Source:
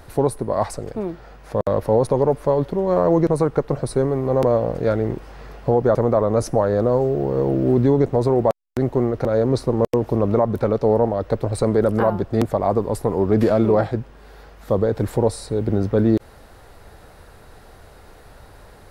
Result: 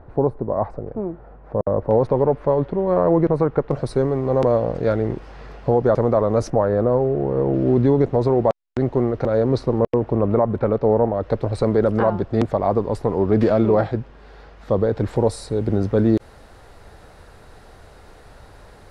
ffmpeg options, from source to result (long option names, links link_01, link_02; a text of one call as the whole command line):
ffmpeg -i in.wav -af "asetnsamples=nb_out_samples=441:pad=0,asendcmd='1.91 lowpass f 2500;3.71 lowpass f 5900;6.5 lowpass f 2400;7.54 lowpass f 4700;9.79 lowpass f 2500;11.23 lowpass f 5000;15.16 lowpass f 9700',lowpass=1000" out.wav